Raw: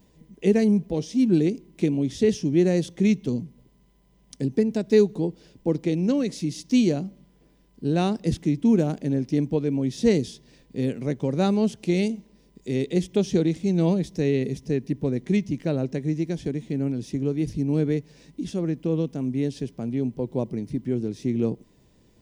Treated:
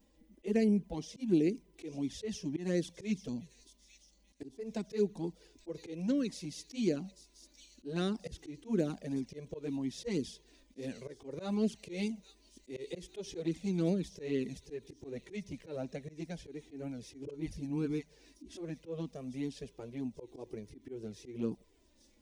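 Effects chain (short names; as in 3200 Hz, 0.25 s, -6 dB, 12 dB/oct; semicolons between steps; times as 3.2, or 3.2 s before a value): bell 130 Hz -11 dB 0.86 oct; thin delay 0.841 s, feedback 47%, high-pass 4400 Hz, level -10 dB; auto swell 0.136 s; 17.25–18.57 dispersion highs, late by 40 ms, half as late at 370 Hz; envelope flanger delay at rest 3.7 ms, full sweep at -17 dBFS; gain -5 dB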